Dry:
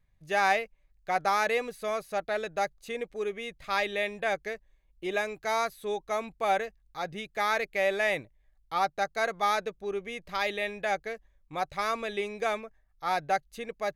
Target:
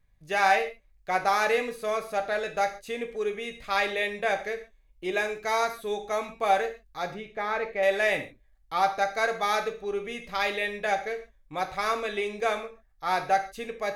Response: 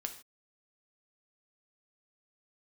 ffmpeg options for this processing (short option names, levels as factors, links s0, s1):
-filter_complex "[0:a]asettb=1/sr,asplit=3[s0][s1][s2];[s0]atrim=end=7.144[s3];[s1]atrim=start=7.14:end=7.83,asetpts=PTS-STARTPTS,afade=t=in:d=0.004:c=qsin,afade=t=out:st=0.686:d=0.004:c=qsin,lowpass=f=1100:p=1[s4];[s2]atrim=start=7.826[s5];[s3][s4]acrossfade=d=0.004:c1=hsin:c2=qsin[s6];[s6][s5]acrossfade=d=0.004:c1=qsin:c2=hsin[s7];[1:a]atrim=start_sample=2205,asetrate=48510,aresample=44100[s8];[s7][s8]afir=irnorm=-1:irlink=0,volume=1.68"